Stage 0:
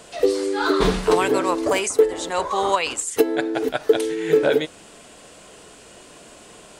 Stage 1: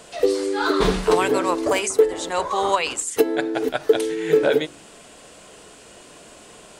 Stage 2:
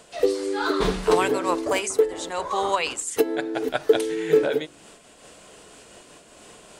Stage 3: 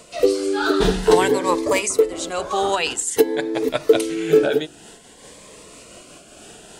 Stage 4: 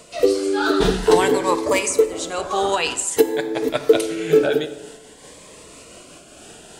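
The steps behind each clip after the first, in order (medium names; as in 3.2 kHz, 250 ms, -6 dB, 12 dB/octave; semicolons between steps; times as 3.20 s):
de-hum 47.89 Hz, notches 8
random flutter of the level, depth 60%
Shepard-style phaser rising 0.52 Hz; trim +6 dB
plate-style reverb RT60 1.2 s, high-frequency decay 0.6×, DRR 10 dB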